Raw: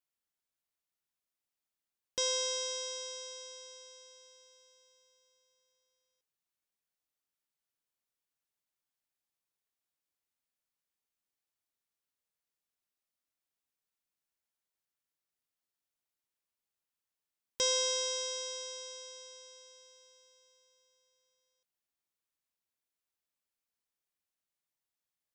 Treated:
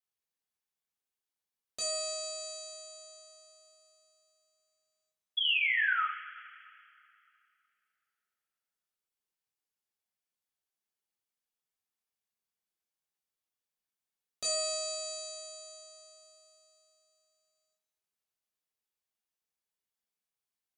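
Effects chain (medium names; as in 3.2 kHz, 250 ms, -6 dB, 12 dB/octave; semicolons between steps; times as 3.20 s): painted sound fall, 6.55–7.37 s, 1–2.8 kHz -27 dBFS; two-slope reverb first 0.51 s, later 3.2 s, from -19 dB, DRR -4.5 dB; tape speed +22%; trim -7 dB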